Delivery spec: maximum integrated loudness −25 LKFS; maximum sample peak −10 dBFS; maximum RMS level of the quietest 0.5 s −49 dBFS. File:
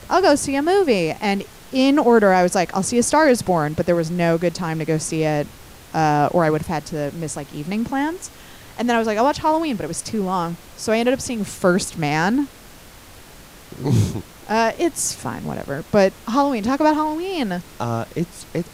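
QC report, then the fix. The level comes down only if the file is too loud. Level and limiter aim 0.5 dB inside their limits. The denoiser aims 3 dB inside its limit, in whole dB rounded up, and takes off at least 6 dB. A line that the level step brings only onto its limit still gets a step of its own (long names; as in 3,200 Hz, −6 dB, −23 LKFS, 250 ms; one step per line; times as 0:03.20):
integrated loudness −20.0 LKFS: out of spec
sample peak −5.0 dBFS: out of spec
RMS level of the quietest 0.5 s −43 dBFS: out of spec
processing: broadband denoise 6 dB, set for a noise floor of −43 dBFS
level −5.5 dB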